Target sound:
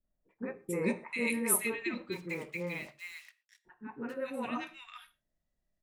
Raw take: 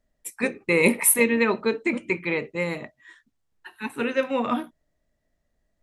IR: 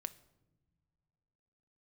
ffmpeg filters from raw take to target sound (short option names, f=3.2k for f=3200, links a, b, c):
-filter_complex "[0:a]asplit=3[a][b][c];[a]afade=t=out:st=1.67:d=0.02[d];[b]acrusher=bits=6:mix=0:aa=0.5,afade=t=in:st=1.67:d=0.02,afade=t=out:st=3.69:d=0.02[e];[c]afade=t=in:st=3.69:d=0.02[f];[d][e][f]amix=inputs=3:normalize=0,acrossover=split=490|1600[g][h][i];[h]adelay=40[j];[i]adelay=440[k];[g][j][k]amix=inputs=3:normalize=0[l];[1:a]atrim=start_sample=2205,atrim=end_sample=6174[m];[l][m]afir=irnorm=-1:irlink=0,volume=-7dB"